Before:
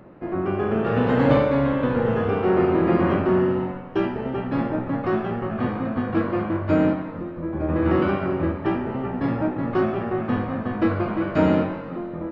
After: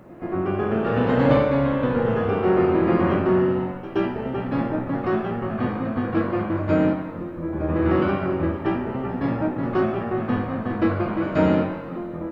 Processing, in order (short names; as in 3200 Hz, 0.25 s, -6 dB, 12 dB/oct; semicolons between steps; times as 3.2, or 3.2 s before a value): requantised 12-bit, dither none; pre-echo 0.124 s -15 dB